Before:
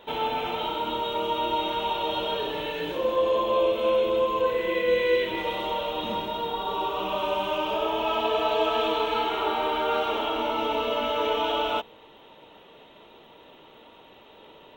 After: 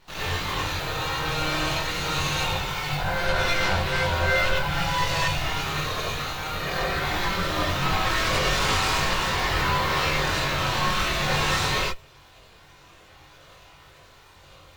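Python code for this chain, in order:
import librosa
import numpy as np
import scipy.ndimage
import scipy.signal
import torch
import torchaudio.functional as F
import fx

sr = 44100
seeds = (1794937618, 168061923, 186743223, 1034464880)

y = x + 0.8 * np.pad(x, (int(2.8 * sr / 1000.0), 0))[:len(x)]
y = np.abs(y)
y = fx.cheby_harmonics(y, sr, harmonics=(4, 7, 8), levels_db=(-11, -29, -15), full_scale_db=-10.5)
y = fx.chorus_voices(y, sr, voices=6, hz=0.31, base_ms=22, depth_ms=1.2, mix_pct=50)
y = fx.rev_gated(y, sr, seeds[0], gate_ms=120, shape='rising', drr_db=-5.5)
y = F.gain(torch.from_numpy(y), 3.0).numpy()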